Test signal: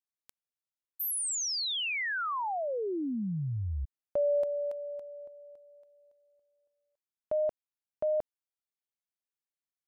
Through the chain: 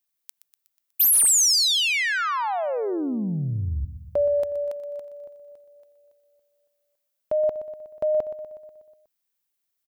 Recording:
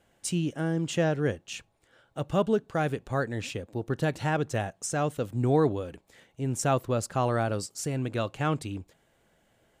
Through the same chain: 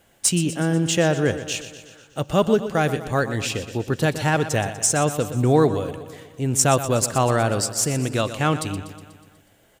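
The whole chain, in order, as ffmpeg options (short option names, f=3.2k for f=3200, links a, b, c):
-filter_complex "[0:a]aemphasis=mode=production:type=75kf,asplit=2[a][b];[b]adynamicsmooth=sensitivity=3:basefreq=5.9k,volume=0.5dB[c];[a][c]amix=inputs=2:normalize=0,aecho=1:1:122|244|366|488|610|732|854:0.237|0.142|0.0854|0.0512|0.0307|0.0184|0.0111"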